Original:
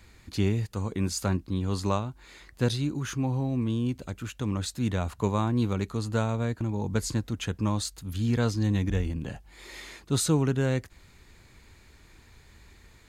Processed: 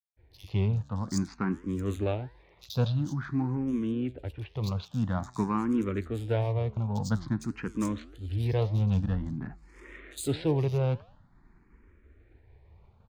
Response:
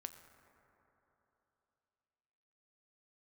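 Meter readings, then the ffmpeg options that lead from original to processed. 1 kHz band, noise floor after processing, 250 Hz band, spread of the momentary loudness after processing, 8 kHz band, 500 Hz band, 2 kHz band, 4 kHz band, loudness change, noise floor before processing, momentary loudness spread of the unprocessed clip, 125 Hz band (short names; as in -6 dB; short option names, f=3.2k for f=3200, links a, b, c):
-3.0 dB, -61 dBFS, -1.5 dB, 9 LU, -9.5 dB, -1.5 dB, -5.0 dB, -7.5 dB, -2.0 dB, -56 dBFS, 10 LU, -1.0 dB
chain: -filter_complex "[0:a]adynamicsmooth=sensitivity=6.5:basefreq=1.3k,acrossover=split=3800[a][b];[a]adelay=160[c];[c][b]amix=inputs=2:normalize=0,agate=range=-33dB:threshold=-52dB:ratio=3:detection=peak,flanger=delay=7.9:depth=6.4:regen=88:speed=1.7:shape=sinusoidal,dynaudnorm=f=280:g=3:m=3.5dB,asplit=2[d][e];[e]afreqshift=0.49[f];[d][f]amix=inputs=2:normalize=1,volume=2.5dB"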